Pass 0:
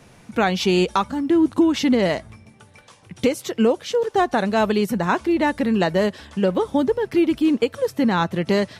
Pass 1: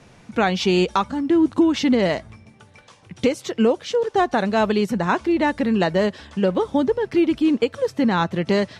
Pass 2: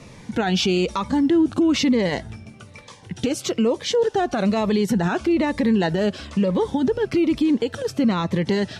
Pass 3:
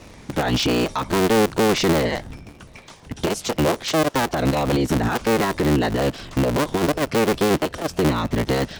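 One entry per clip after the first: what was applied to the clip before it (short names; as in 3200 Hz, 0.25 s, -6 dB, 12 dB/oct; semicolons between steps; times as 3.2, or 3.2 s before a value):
LPF 7700 Hz 12 dB/oct
limiter -19 dBFS, peak gain reduction 11.5 dB; cascading phaser falling 1.1 Hz; gain +7 dB
cycle switcher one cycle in 3, inverted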